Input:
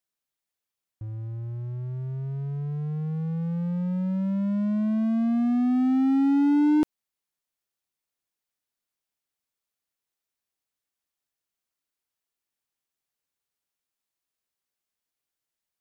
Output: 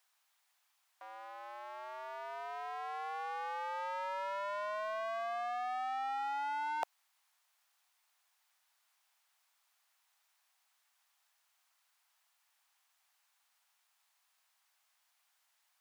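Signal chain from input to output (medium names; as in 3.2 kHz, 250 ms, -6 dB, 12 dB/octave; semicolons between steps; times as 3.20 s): steep high-pass 750 Hz 36 dB/octave; tilt EQ -2 dB/octave; reverse; compression 10:1, threshold -52 dBFS, peak gain reduction 15.5 dB; reverse; trim +16.5 dB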